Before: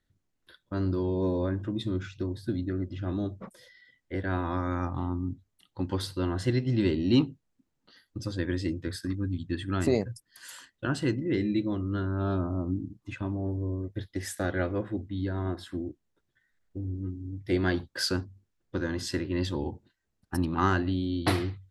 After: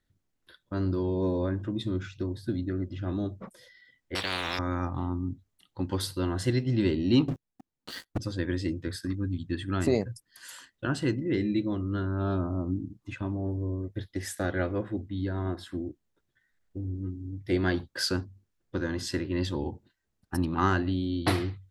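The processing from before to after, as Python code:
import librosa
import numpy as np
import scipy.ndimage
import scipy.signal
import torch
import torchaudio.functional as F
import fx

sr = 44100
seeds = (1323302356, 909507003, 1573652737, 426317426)

y = fx.spectral_comp(x, sr, ratio=10.0, at=(4.15, 4.59))
y = fx.high_shelf(y, sr, hz=7900.0, db=10.5, at=(5.92, 6.63))
y = fx.leveller(y, sr, passes=5, at=(7.28, 8.18))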